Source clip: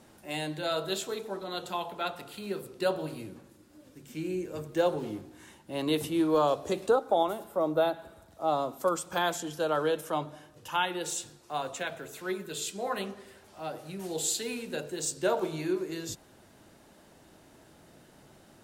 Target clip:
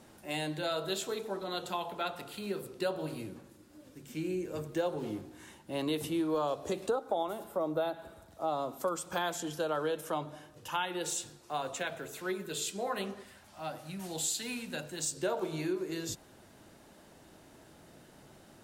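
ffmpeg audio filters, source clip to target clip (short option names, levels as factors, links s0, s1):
-filter_complex "[0:a]asettb=1/sr,asplit=3[s0][s1][s2];[s0]atrim=end=13.234[s3];[s1]atrim=start=13.23:end=15.13,asetpts=PTS-STARTPTS,afade=t=in:d=0.004:c=qsin,afade=t=out:st=1.896:d=0.004:c=qsin,equalizer=f=420:t=o:w=0.51:g=-13.5[s4];[s2]atrim=start=15.126[s5];[s3][s4]acrossfade=d=0.004:c1=hsin:c2=qsin[s6];[s6][s5]acrossfade=d=0.004:c1=qsin:c2=hsin,acompressor=threshold=0.0282:ratio=2.5"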